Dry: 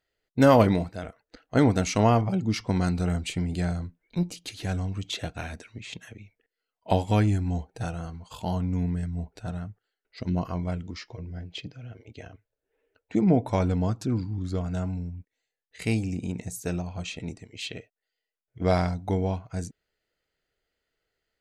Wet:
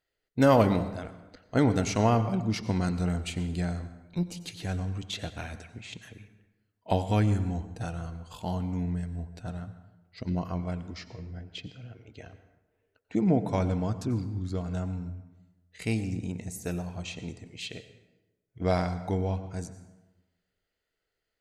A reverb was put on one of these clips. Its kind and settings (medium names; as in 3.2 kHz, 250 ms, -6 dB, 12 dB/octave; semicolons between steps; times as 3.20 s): plate-style reverb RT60 1.1 s, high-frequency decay 0.6×, pre-delay 80 ms, DRR 12 dB; trim -3 dB